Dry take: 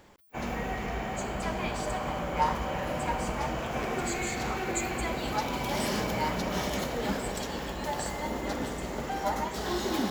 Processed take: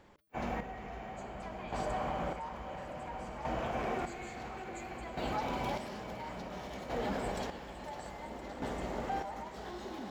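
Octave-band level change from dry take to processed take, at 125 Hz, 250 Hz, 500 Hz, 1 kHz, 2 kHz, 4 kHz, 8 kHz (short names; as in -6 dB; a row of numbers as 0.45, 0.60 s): -8.5, -8.5, -6.5, -6.5, -9.5, -11.5, -16.5 dB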